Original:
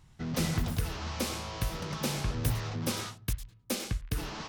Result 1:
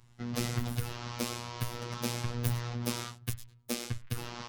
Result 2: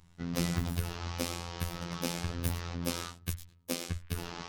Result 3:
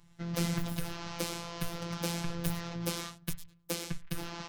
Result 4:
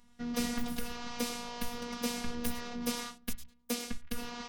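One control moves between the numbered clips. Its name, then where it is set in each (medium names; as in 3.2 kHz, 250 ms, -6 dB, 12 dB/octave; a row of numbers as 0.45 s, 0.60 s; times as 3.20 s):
robot voice, frequency: 120 Hz, 86 Hz, 170 Hz, 240 Hz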